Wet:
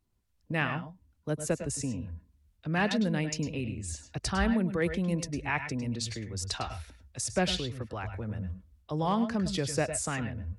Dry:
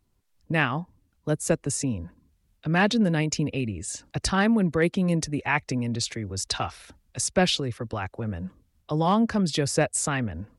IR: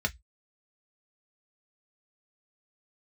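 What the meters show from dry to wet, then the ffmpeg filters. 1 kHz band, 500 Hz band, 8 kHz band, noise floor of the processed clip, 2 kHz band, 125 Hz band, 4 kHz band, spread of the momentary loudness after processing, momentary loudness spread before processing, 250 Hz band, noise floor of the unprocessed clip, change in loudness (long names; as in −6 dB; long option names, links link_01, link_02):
−6.0 dB, −6.0 dB, −6.5 dB, −71 dBFS, −6.0 dB, −5.5 dB, −6.0 dB, 11 LU, 11 LU, −6.0 dB, −69 dBFS, −6.0 dB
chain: -filter_complex "[0:a]asplit=2[link_01][link_02];[link_02]asubboost=boost=5.5:cutoff=71[link_03];[1:a]atrim=start_sample=2205,adelay=102[link_04];[link_03][link_04]afir=irnorm=-1:irlink=0,volume=-15.5dB[link_05];[link_01][link_05]amix=inputs=2:normalize=0,volume=-6.5dB"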